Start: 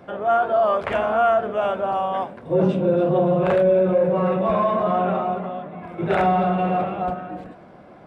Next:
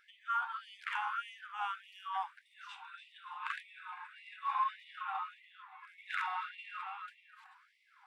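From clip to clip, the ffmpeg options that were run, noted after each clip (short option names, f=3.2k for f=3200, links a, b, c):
-af "afftfilt=real='re*gte(b*sr/1024,740*pow(1900/740,0.5+0.5*sin(2*PI*1.7*pts/sr)))':imag='im*gte(b*sr/1024,740*pow(1900/740,0.5+0.5*sin(2*PI*1.7*pts/sr)))':win_size=1024:overlap=0.75,volume=-8dB"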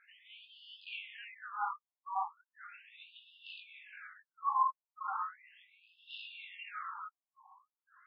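-af "flanger=delay=18:depth=4.4:speed=2.2,afftfilt=real='re*between(b*sr/1024,790*pow(3800/790,0.5+0.5*sin(2*PI*0.37*pts/sr))/1.41,790*pow(3800/790,0.5+0.5*sin(2*PI*0.37*pts/sr))*1.41)':imag='im*between(b*sr/1024,790*pow(3800/790,0.5+0.5*sin(2*PI*0.37*pts/sr))/1.41,790*pow(3800/790,0.5+0.5*sin(2*PI*0.37*pts/sr))*1.41)':win_size=1024:overlap=0.75,volume=5.5dB"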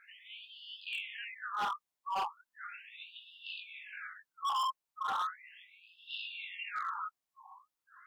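-af "asoftclip=type=hard:threshold=-36dB,volume=5.5dB"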